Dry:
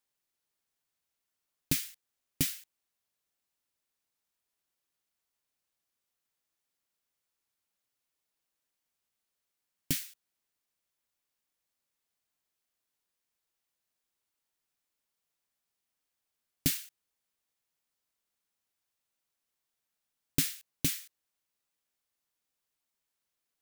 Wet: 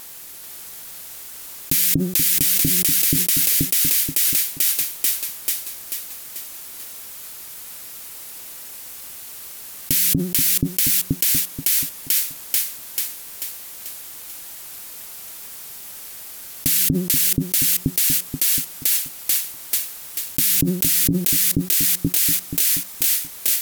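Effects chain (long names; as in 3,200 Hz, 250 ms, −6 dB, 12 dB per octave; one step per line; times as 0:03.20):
parametric band 14,000 Hz +9 dB 1.2 octaves
hum removal 180.9 Hz, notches 4
pitch vibrato 13 Hz 63 cents
on a send: echo with a time of its own for lows and highs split 470 Hz, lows 240 ms, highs 439 ms, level −4.5 dB
on the sum: envelope flattener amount 100%
level +2 dB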